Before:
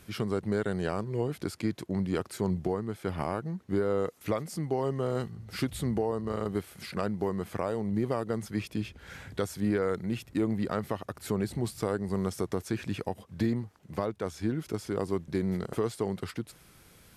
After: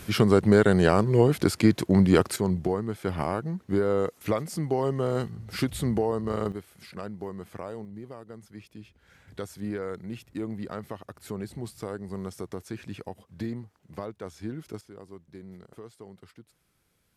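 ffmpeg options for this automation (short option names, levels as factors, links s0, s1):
-af "asetnsamples=n=441:p=0,asendcmd='2.36 volume volume 3.5dB;6.52 volume volume -6dB;7.85 volume volume -12.5dB;9.28 volume volume -5dB;14.81 volume volume -15dB',volume=3.55"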